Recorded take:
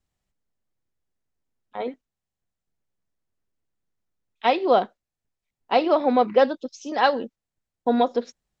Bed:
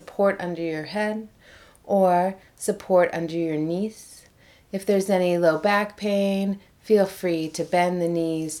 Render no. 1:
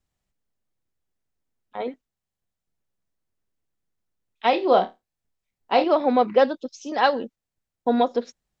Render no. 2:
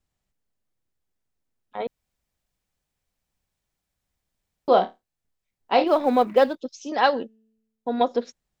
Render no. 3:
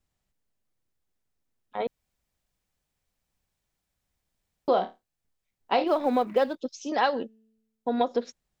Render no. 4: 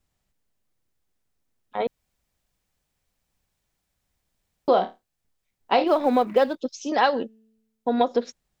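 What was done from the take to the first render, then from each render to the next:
0:04.50–0:05.84: flutter between parallel walls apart 4.6 metres, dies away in 0.2 s
0:01.87–0:04.68: fill with room tone; 0:05.87–0:06.56: mu-law and A-law mismatch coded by A; 0:07.23–0:08.01: tuned comb filter 220 Hz, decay 1.1 s, mix 50%
downward compressor 3 to 1, threshold −21 dBFS, peak gain reduction 7 dB
level +4 dB

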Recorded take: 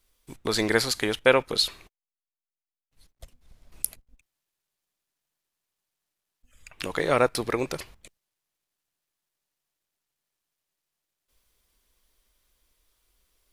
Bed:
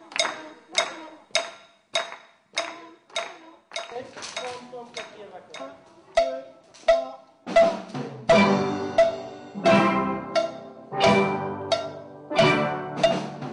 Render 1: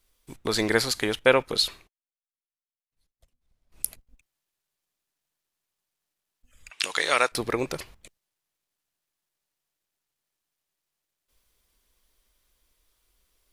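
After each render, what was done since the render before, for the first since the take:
0:01.73–0:03.86: duck −17 dB, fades 0.17 s
0:06.70–0:07.32: meter weighting curve ITU-R 468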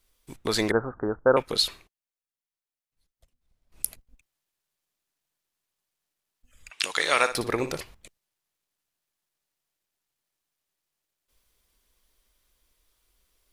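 0:00.71–0:01.37: Butterworth low-pass 1,500 Hz 72 dB per octave
0:06.95–0:07.80: flutter between parallel walls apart 10.3 metres, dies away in 0.32 s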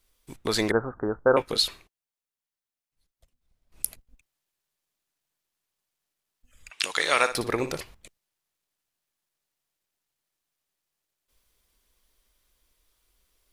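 0:01.13–0:01.59: double-tracking delay 18 ms −11.5 dB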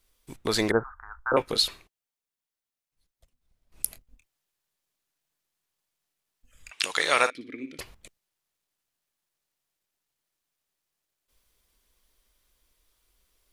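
0:00.83–0:01.32: inverse Chebyshev band-stop filter 120–570 Hz
0:03.88–0:06.71: double-tracking delay 26 ms −9.5 dB
0:07.30–0:07.79: formant filter i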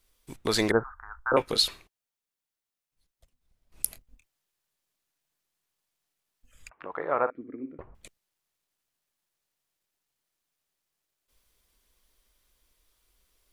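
0:06.69–0:07.95: low-pass filter 1,200 Hz 24 dB per octave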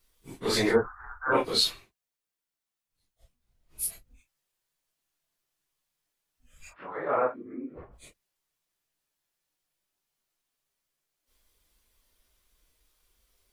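random phases in long frames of 100 ms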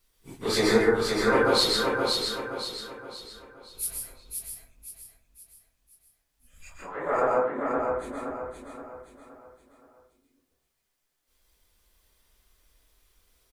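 repeating echo 521 ms, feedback 41%, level −4 dB
dense smooth reverb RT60 0.54 s, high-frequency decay 0.5×, pre-delay 115 ms, DRR −0.5 dB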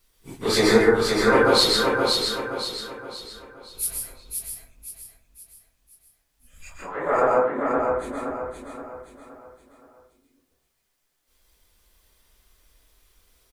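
level +4.5 dB

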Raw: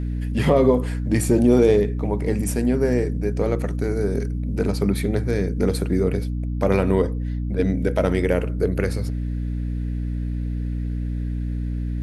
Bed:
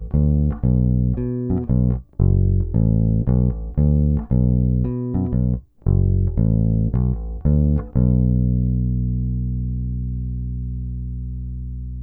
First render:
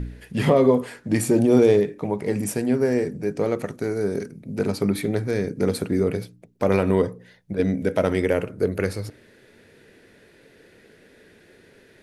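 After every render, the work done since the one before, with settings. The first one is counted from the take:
hum removal 60 Hz, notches 5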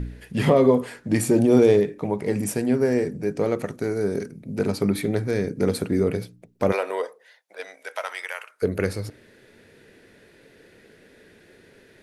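0:06.71–0:08.62: high-pass filter 460 Hz → 1,100 Hz 24 dB per octave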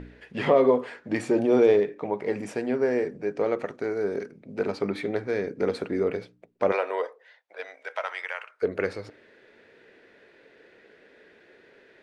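Bessel low-pass filter 5,700 Hz, order 4
bass and treble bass −15 dB, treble −9 dB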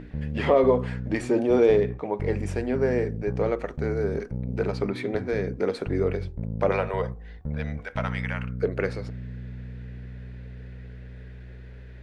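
mix in bed −14.5 dB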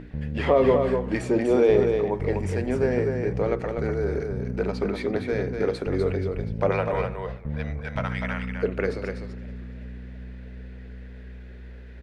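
on a send: single-tap delay 247 ms −5.5 dB
on the sum: feedback echo with a swinging delay time 328 ms, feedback 54%, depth 149 cents, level −22 dB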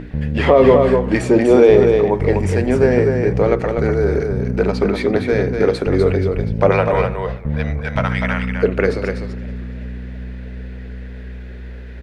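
level +9.5 dB
brickwall limiter −1 dBFS, peak gain reduction 2.5 dB

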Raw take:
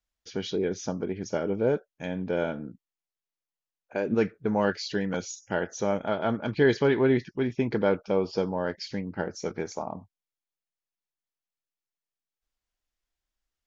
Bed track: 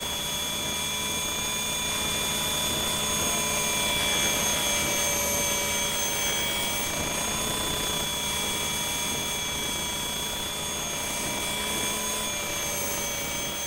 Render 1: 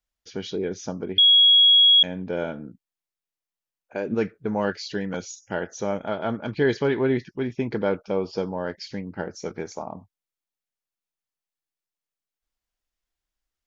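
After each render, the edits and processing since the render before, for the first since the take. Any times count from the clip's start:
0:01.18–0:02.03: beep over 3,320 Hz −11.5 dBFS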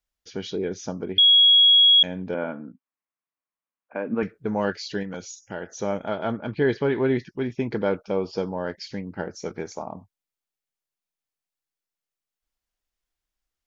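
0:02.34–0:04.23: loudspeaker in its box 180–2,500 Hz, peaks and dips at 260 Hz +5 dB, 380 Hz −8 dB, 1,100 Hz +7 dB
0:05.03–0:05.77: downward compressor 1.5 to 1, threshold −36 dBFS
0:06.32–0:06.95: high-frequency loss of the air 170 metres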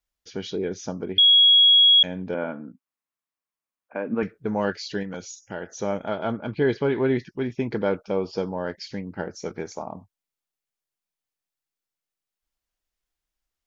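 0:01.33–0:02.04: Butterworth high-pass 440 Hz
0:06.20–0:06.96: notch filter 1,800 Hz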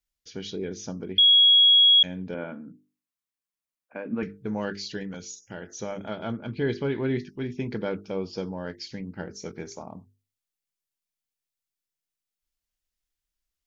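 parametric band 810 Hz −8 dB 2.4 octaves
mains-hum notches 50/100/150/200/250/300/350/400/450 Hz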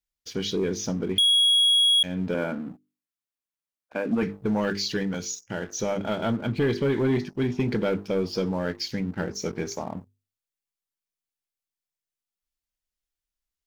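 downward compressor 3 to 1, threshold −25 dBFS, peak gain reduction 7.5 dB
leveller curve on the samples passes 2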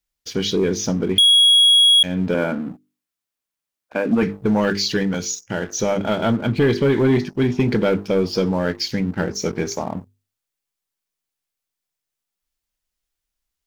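level +7 dB

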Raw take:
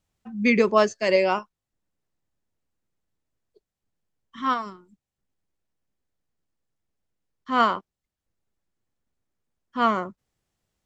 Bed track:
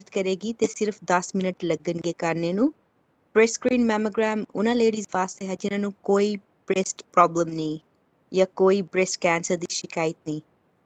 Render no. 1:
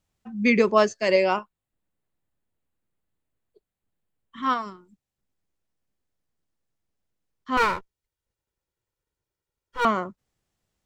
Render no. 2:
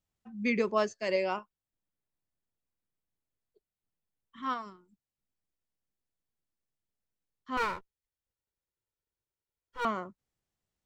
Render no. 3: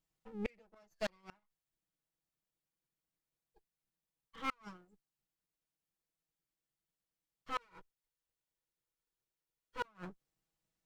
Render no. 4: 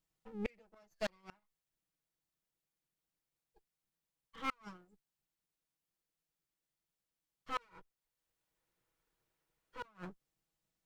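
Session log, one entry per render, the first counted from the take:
0:01.36–0:04.43: parametric band 5,600 Hz −13.5 dB 0.43 octaves; 0:07.57–0:09.85: lower of the sound and its delayed copy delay 2.1 ms
level −9.5 dB
lower of the sound and its delayed copy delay 6.2 ms; gate with flip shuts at −25 dBFS, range −36 dB
0:07.69–0:09.83: multiband upward and downward compressor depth 40%

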